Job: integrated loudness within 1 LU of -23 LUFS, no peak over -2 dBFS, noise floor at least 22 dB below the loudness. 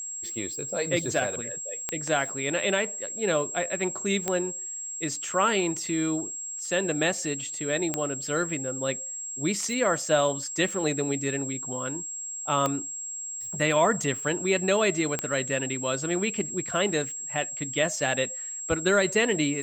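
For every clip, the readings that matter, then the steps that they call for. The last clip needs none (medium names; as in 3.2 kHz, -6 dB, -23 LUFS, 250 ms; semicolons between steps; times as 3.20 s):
clicks found 5; steady tone 7.6 kHz; tone level -33 dBFS; loudness -27.0 LUFS; peak level -10.5 dBFS; loudness target -23.0 LUFS
-> de-click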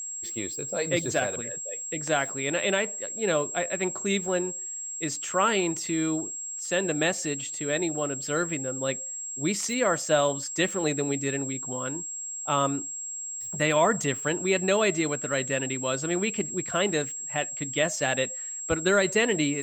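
clicks found 0; steady tone 7.6 kHz; tone level -33 dBFS
-> band-stop 7.6 kHz, Q 30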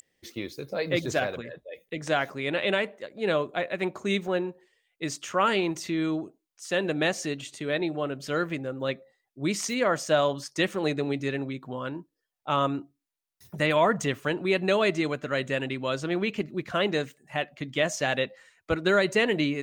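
steady tone not found; loudness -28.0 LUFS; peak level -10.5 dBFS; loudness target -23.0 LUFS
-> trim +5 dB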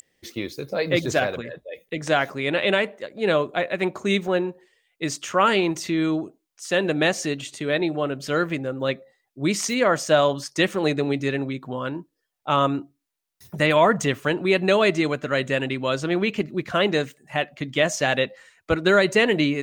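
loudness -23.0 LUFS; peak level -5.5 dBFS; noise floor -77 dBFS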